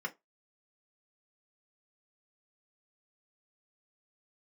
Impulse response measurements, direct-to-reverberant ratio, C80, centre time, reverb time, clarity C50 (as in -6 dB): -1.0 dB, 32.0 dB, 6 ms, 0.20 s, 22.5 dB